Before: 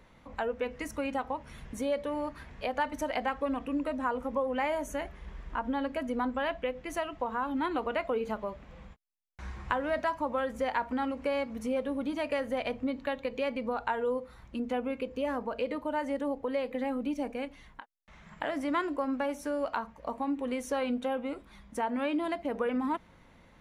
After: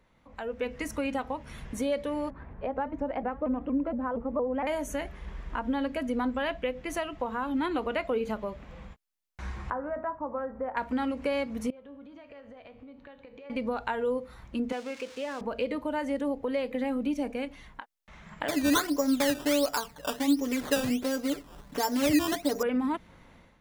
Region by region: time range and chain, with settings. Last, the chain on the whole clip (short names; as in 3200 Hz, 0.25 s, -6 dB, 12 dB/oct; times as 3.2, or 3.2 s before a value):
2.3–4.67 LPF 1100 Hz + shaped vibrato saw up 4.3 Hz, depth 160 cents
9.7–10.77 LPF 1300 Hz 24 dB/oct + low shelf 480 Hz -7.5 dB + de-hum 78.8 Hz, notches 24
11.7–13.5 compressor 16:1, threshold -39 dBFS + air absorption 140 m + resonator 94 Hz, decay 1 s, mix 70%
14.72–15.41 switching spikes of -31 dBFS + HPF 730 Hz 6 dB/oct + air absorption 110 m
18.48–22.63 comb 6.9 ms, depth 78% + decimation with a swept rate 14× 1.4 Hz
whole clip: dynamic EQ 960 Hz, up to -5 dB, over -41 dBFS, Q 0.8; AGC gain up to 12 dB; gain -8 dB